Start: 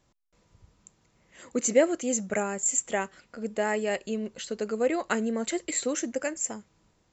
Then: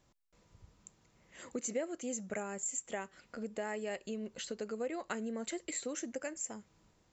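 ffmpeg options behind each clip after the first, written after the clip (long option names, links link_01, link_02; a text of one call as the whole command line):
ffmpeg -i in.wav -af "acompressor=threshold=-38dB:ratio=2.5,volume=-2dB" out.wav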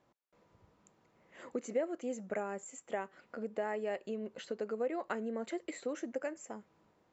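ffmpeg -i in.wav -af "bandpass=frequency=640:width_type=q:width=0.51:csg=0,volume=3.5dB" out.wav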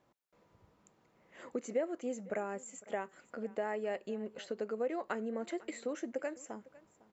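ffmpeg -i in.wav -af "aecho=1:1:504:0.0891" out.wav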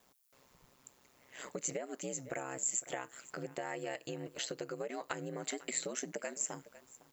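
ffmpeg -i in.wav -af "aeval=exprs='val(0)*sin(2*PI*65*n/s)':channel_layout=same,acompressor=threshold=-39dB:ratio=6,crystalizer=i=7:c=0,volume=1.5dB" out.wav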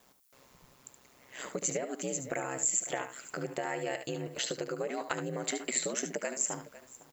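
ffmpeg -i in.wav -af "aecho=1:1:73:0.335,volume=5dB" out.wav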